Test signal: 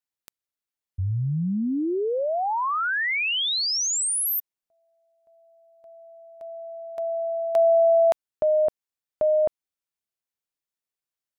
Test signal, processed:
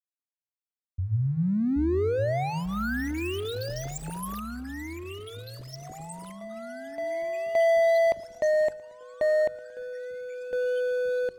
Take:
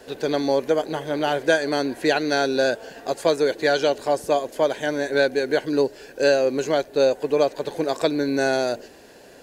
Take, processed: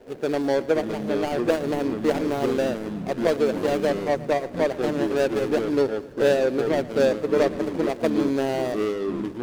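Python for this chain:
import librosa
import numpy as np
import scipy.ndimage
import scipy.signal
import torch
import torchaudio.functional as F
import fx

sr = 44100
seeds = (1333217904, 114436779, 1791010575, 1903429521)

p1 = scipy.signal.medfilt(x, 41)
p2 = fx.echo_pitch(p1, sr, ms=449, semitones=-5, count=3, db_per_echo=-6.0)
p3 = fx.hum_notches(p2, sr, base_hz=50, count=3)
y = p3 + fx.echo_feedback(p3, sr, ms=114, feedback_pct=57, wet_db=-19.5, dry=0)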